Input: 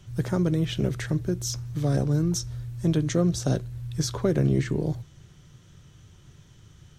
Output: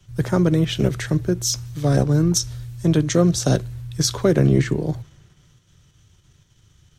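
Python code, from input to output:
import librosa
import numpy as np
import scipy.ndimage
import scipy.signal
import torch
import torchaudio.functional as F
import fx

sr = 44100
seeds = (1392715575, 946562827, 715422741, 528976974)

p1 = fx.low_shelf(x, sr, hz=450.0, db=-4.0)
p2 = fx.level_steps(p1, sr, step_db=14)
p3 = p1 + (p2 * librosa.db_to_amplitude(0.0))
p4 = fx.band_widen(p3, sr, depth_pct=40)
y = p4 * librosa.db_to_amplitude(4.5)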